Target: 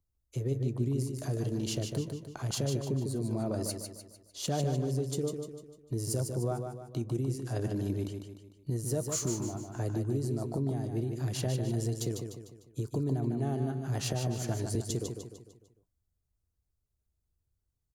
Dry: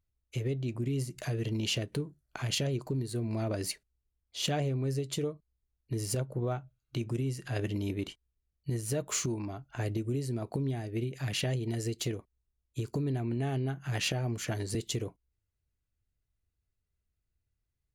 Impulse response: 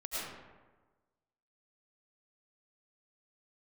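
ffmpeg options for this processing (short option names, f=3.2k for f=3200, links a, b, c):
-filter_complex "[0:a]acrossover=split=130|1500|3900[a][b][c][d];[c]acrusher=bits=3:mix=0:aa=0.5[e];[a][b][e][d]amix=inputs=4:normalize=0,aecho=1:1:150|300|450|600|750:0.501|0.226|0.101|0.0457|0.0206"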